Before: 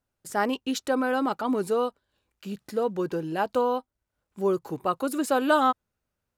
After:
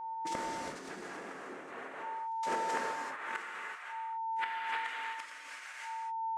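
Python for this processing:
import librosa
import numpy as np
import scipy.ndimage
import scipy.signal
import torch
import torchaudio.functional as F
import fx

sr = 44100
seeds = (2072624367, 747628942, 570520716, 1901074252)

p1 = fx.wiener(x, sr, points=9)
p2 = fx.rider(p1, sr, range_db=10, speed_s=2.0)
p3 = p1 + (p2 * 10.0 ** (0.0 / 20.0))
p4 = fx.noise_vocoder(p3, sr, seeds[0], bands=3)
p5 = fx.filter_sweep_highpass(p4, sr, from_hz=290.0, to_hz=2100.0, start_s=1.07, end_s=4.07, q=0.94)
p6 = p5 + 10.0 ** (-42.0 / 20.0) * np.sin(2.0 * np.pi * 900.0 * np.arange(len(p5)) / sr)
p7 = fx.gate_flip(p6, sr, shuts_db=-24.0, range_db=-29)
p8 = fx.rev_gated(p7, sr, seeds[1], gate_ms=410, shape='flat', drr_db=-3.0)
y = fx.pre_swell(p8, sr, db_per_s=49.0)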